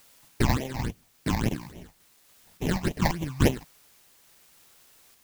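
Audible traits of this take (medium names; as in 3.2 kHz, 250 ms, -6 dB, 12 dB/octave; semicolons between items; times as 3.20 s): aliases and images of a low sample rate 1.3 kHz, jitter 20%; phasing stages 8, 3.5 Hz, lowest notch 390–1500 Hz; a quantiser's noise floor 10-bit, dither triangular; random-step tremolo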